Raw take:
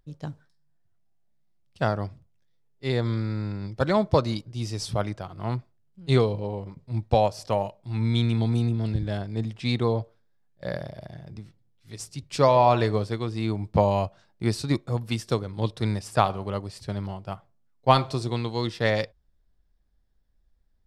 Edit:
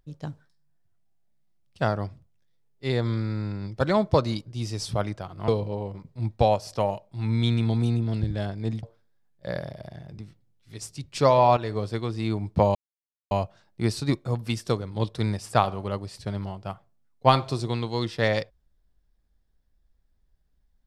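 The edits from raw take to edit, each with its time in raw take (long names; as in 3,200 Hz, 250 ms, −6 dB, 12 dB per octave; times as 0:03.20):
0:05.48–0:06.20: remove
0:09.55–0:10.01: remove
0:12.75–0:13.14: fade in, from −12 dB
0:13.93: splice in silence 0.56 s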